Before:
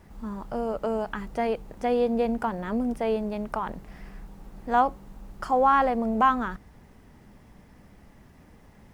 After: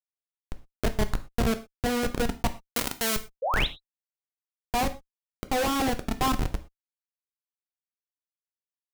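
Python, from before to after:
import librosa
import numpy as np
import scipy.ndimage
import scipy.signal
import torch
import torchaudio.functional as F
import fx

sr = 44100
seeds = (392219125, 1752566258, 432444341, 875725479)

p1 = fx.high_shelf(x, sr, hz=3400.0, db=-5.5)
p2 = p1 + fx.echo_wet_bandpass(p1, sr, ms=887, feedback_pct=48, hz=1300.0, wet_db=-15, dry=0)
p3 = fx.schmitt(p2, sr, flips_db=-22.5)
p4 = fx.tilt_eq(p3, sr, slope=3.5, at=(2.59, 3.15), fade=0.02)
p5 = fx.spec_paint(p4, sr, seeds[0], shape='rise', start_s=3.42, length_s=0.25, low_hz=470.0, high_hz=4200.0, level_db=-31.0)
p6 = fx.rider(p5, sr, range_db=10, speed_s=0.5)
p7 = p5 + (p6 * librosa.db_to_amplitude(-1.5))
p8 = fx.rev_gated(p7, sr, seeds[1], gate_ms=140, shape='falling', drr_db=9.0)
y = p8 * librosa.db_to_amplitude(-1.0)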